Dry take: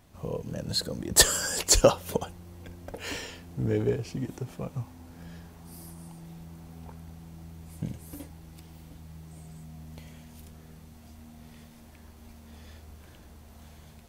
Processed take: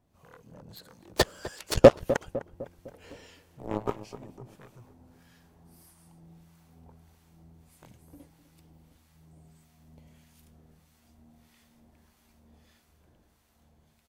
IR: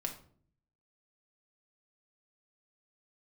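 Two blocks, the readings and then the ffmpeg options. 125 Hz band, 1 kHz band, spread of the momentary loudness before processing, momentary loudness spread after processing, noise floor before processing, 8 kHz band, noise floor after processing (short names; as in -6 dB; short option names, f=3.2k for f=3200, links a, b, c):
-4.0 dB, +1.0 dB, 26 LU, 25 LU, -52 dBFS, -17.0 dB, -66 dBFS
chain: -filter_complex "[0:a]acrossover=split=4800[a][b];[b]acompressor=threshold=-44dB:ratio=4:attack=1:release=60[c];[a][c]amix=inputs=2:normalize=0,aeval=exprs='0.501*(cos(1*acos(clip(val(0)/0.501,-1,1)))-cos(1*PI/2))+0.126*(cos(5*acos(clip(val(0)/0.501,-1,1)))-cos(5*PI/2))+0.0355*(cos(6*acos(clip(val(0)/0.501,-1,1)))-cos(6*PI/2))+0.178*(cos(7*acos(clip(val(0)/0.501,-1,1)))-cos(7*PI/2))+0.0224*(cos(8*acos(clip(val(0)/0.501,-1,1)))-cos(8*PI/2))':c=same,dynaudnorm=f=190:g=17:m=3dB,lowshelf=f=140:g=-4,acrossover=split=940[d][e];[d]aeval=exprs='val(0)*(1-0.7/2+0.7/2*cos(2*PI*1.6*n/s))':c=same[f];[e]aeval=exprs='val(0)*(1-0.7/2-0.7/2*cos(2*PI*1.6*n/s))':c=same[g];[f][g]amix=inputs=2:normalize=0,asplit=2[h][i];[i]adelay=253,lowpass=f=1.2k:p=1,volume=-13dB,asplit=2[j][k];[k]adelay=253,lowpass=f=1.2k:p=1,volume=0.52,asplit=2[l][m];[m]adelay=253,lowpass=f=1.2k:p=1,volume=0.52,asplit=2[n][o];[o]adelay=253,lowpass=f=1.2k:p=1,volume=0.52,asplit=2[p][q];[q]adelay=253,lowpass=f=1.2k:p=1,volume=0.52[r];[j][l][n][p][r]amix=inputs=5:normalize=0[s];[h][s]amix=inputs=2:normalize=0,volume=3.5dB"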